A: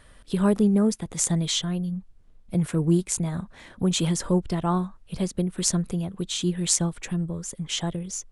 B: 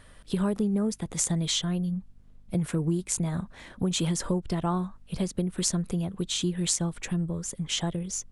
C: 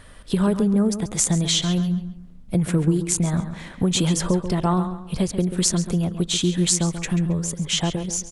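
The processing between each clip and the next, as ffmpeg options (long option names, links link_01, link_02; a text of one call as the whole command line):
ffmpeg -i in.wav -af "acompressor=threshold=-23dB:ratio=6,aeval=exprs='val(0)+0.00126*(sin(2*PI*50*n/s)+sin(2*PI*2*50*n/s)/2+sin(2*PI*3*50*n/s)/3+sin(2*PI*4*50*n/s)/4+sin(2*PI*5*50*n/s)/5)':channel_layout=same" out.wav
ffmpeg -i in.wav -filter_complex "[0:a]asplit=2[link_01][link_02];[link_02]adelay=136,lowpass=frequency=4500:poles=1,volume=-10dB,asplit=2[link_03][link_04];[link_04]adelay=136,lowpass=frequency=4500:poles=1,volume=0.33,asplit=2[link_05][link_06];[link_06]adelay=136,lowpass=frequency=4500:poles=1,volume=0.33,asplit=2[link_07][link_08];[link_08]adelay=136,lowpass=frequency=4500:poles=1,volume=0.33[link_09];[link_01][link_03][link_05][link_07][link_09]amix=inputs=5:normalize=0,volume=6.5dB" out.wav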